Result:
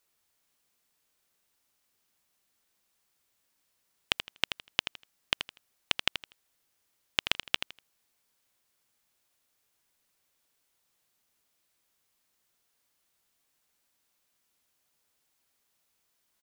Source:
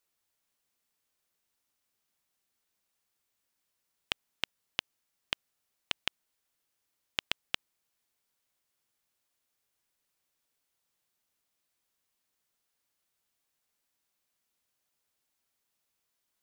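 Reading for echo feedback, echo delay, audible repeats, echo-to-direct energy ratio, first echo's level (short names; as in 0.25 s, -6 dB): 24%, 81 ms, 3, -8.5 dB, -9.0 dB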